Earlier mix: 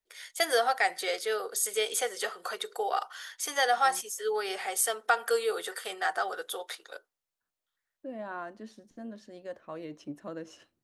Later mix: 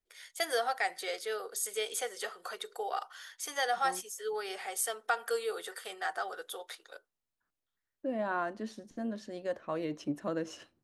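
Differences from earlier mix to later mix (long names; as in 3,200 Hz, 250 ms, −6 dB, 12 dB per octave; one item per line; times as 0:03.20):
first voice −5.5 dB
second voice +5.5 dB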